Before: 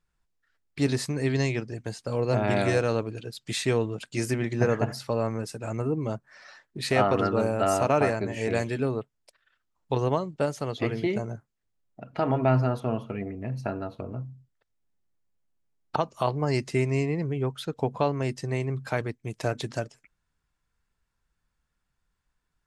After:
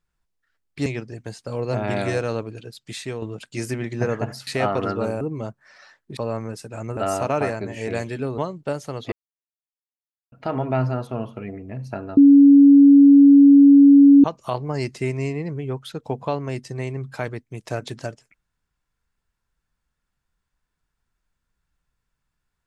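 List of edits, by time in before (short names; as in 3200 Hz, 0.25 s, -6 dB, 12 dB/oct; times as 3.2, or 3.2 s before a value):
0.86–1.46 cut
3.2–3.82 fade out, to -8 dB
5.07–5.87 swap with 6.83–7.57
8.98–10.11 cut
10.85–12.05 mute
13.9–15.97 bleep 281 Hz -6.5 dBFS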